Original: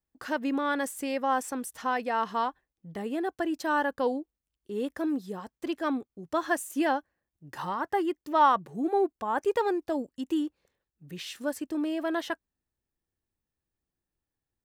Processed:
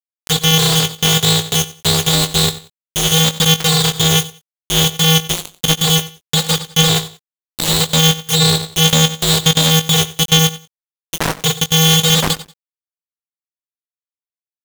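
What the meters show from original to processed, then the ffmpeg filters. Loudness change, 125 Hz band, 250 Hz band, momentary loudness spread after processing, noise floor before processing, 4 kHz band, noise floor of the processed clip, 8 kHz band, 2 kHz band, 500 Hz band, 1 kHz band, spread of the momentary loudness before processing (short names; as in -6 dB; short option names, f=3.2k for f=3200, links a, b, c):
+17.0 dB, +36.0 dB, +11.0 dB, 8 LU, under -85 dBFS, +33.0 dB, under -85 dBFS, +29.5 dB, +13.0 dB, +8.0 dB, +4.5 dB, 10 LU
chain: -filter_complex "[0:a]afftfilt=real='real(if(lt(b,272),68*(eq(floor(b/68),0)*2+eq(floor(b/68),1)*3+eq(floor(b/68),2)*0+eq(floor(b/68),3)*1)+mod(b,68),b),0)':imag='imag(if(lt(b,272),68*(eq(floor(b/68),0)*2+eq(floor(b/68),1)*3+eq(floor(b/68),2)*0+eq(floor(b/68),3)*1)+mod(b,68),b),0)':win_size=2048:overlap=0.75,lowpass=f=1.5k:p=1,afftdn=nr=27:nf=-48,agate=range=-12dB:threshold=-57dB:ratio=16:detection=peak,acontrast=27,acrusher=bits=3:dc=4:mix=0:aa=0.000001,asplit=2[a][b];[b]adelay=20,volume=-9dB[c];[a][c]amix=inputs=2:normalize=0,asplit=2[d][e];[e]aecho=0:1:92|184:0.126|0.0302[f];[d][f]amix=inputs=2:normalize=0,alimiter=level_in=22.5dB:limit=-1dB:release=50:level=0:latency=1,aeval=exprs='val(0)*sgn(sin(2*PI*160*n/s))':c=same,volume=-1dB"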